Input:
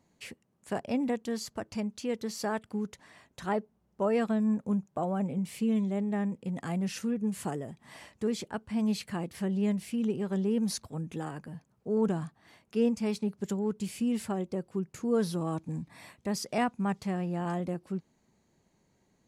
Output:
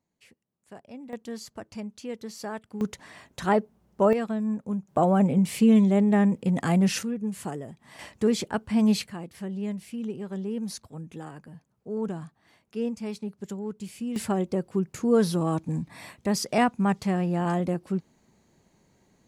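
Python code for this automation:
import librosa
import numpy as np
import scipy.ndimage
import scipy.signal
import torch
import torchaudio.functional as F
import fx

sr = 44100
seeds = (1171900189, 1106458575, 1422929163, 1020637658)

y = fx.gain(x, sr, db=fx.steps((0.0, -12.5), (1.13, -3.0), (2.81, 8.0), (4.13, -0.5), (4.88, 10.0), (7.03, 0.5), (7.99, 7.5), (9.07, -3.0), (14.16, 6.5)))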